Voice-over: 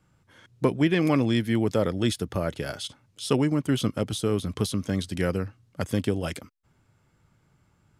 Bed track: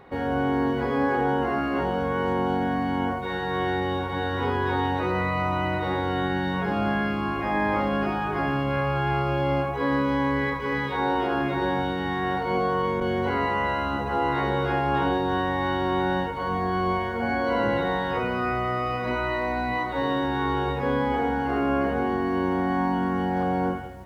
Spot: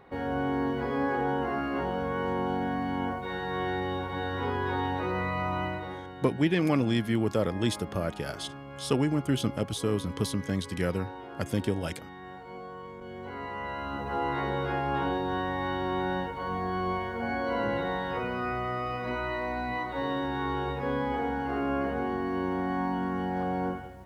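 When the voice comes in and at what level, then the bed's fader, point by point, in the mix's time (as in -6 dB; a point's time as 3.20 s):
5.60 s, -3.0 dB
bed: 5.63 s -5 dB
6.15 s -18 dB
12.97 s -18 dB
14.12 s -5.5 dB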